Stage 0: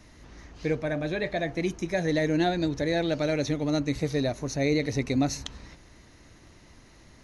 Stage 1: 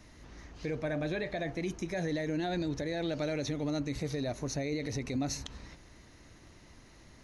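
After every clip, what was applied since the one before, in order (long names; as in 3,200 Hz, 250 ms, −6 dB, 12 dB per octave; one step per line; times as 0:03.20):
brickwall limiter −23 dBFS, peak gain reduction 9 dB
level −2.5 dB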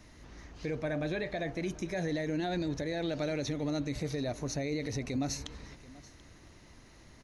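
single-tap delay 734 ms −20.5 dB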